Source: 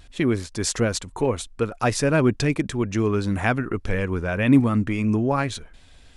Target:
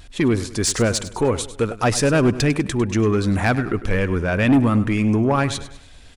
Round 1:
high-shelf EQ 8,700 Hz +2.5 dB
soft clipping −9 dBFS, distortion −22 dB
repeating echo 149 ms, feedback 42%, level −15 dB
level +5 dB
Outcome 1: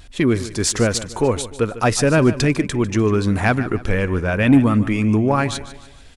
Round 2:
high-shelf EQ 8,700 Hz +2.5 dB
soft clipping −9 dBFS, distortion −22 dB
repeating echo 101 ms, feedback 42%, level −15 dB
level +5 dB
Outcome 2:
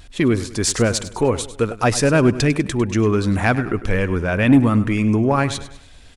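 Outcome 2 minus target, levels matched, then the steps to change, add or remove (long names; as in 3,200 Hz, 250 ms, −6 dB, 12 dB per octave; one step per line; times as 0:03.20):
soft clipping: distortion −7 dB
change: soft clipping −15 dBFS, distortion −14 dB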